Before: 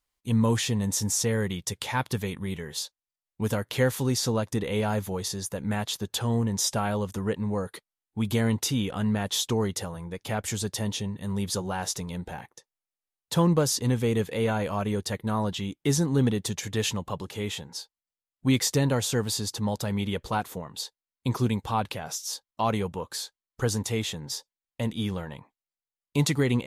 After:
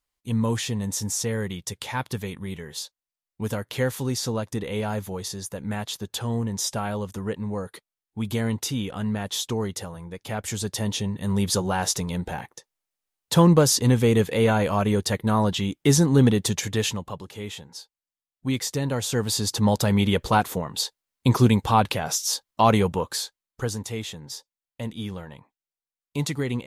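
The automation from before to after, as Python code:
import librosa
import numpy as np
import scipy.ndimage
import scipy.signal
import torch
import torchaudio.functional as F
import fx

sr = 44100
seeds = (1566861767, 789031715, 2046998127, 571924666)

y = fx.gain(x, sr, db=fx.line((10.27, -1.0), (11.32, 6.0), (16.59, 6.0), (17.21, -3.0), (18.8, -3.0), (19.66, 8.0), (22.98, 8.0), (23.77, -3.0)))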